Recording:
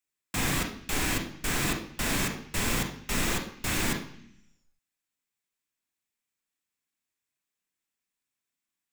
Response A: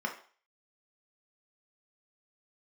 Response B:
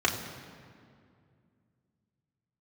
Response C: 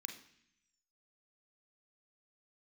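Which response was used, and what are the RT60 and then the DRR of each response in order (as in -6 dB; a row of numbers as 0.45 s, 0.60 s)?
C; 0.45 s, 2.3 s, 0.65 s; 1.0 dB, -2.0 dB, 3.5 dB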